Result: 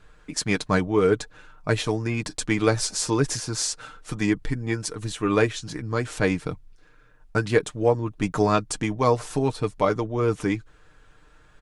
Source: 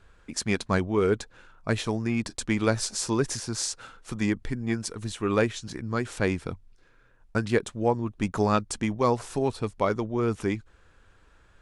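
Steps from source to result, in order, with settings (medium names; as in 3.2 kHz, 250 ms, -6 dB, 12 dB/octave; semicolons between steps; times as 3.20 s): comb 6.6 ms, depth 55%; trim +2.5 dB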